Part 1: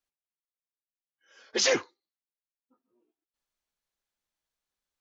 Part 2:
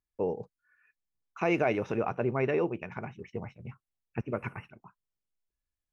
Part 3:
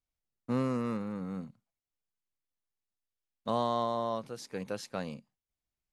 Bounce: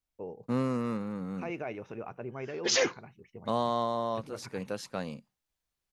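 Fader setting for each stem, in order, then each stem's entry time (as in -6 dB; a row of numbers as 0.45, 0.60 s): -2.0, -10.5, +1.0 dB; 1.10, 0.00, 0.00 s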